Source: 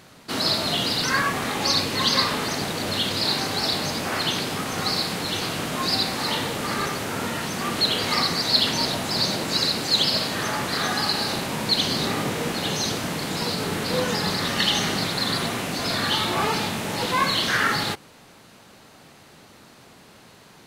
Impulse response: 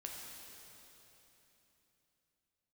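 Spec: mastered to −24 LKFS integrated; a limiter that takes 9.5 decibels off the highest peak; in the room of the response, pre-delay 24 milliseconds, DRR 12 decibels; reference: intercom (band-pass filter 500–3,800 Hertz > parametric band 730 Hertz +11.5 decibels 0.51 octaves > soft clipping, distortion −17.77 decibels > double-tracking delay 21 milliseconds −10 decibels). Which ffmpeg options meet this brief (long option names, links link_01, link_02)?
-filter_complex "[0:a]alimiter=limit=-15dB:level=0:latency=1,asplit=2[link_01][link_02];[1:a]atrim=start_sample=2205,adelay=24[link_03];[link_02][link_03]afir=irnorm=-1:irlink=0,volume=-10dB[link_04];[link_01][link_04]amix=inputs=2:normalize=0,highpass=500,lowpass=3800,equalizer=frequency=730:width_type=o:width=0.51:gain=11.5,asoftclip=threshold=-19dB,asplit=2[link_05][link_06];[link_06]adelay=21,volume=-10dB[link_07];[link_05][link_07]amix=inputs=2:normalize=0,volume=2dB"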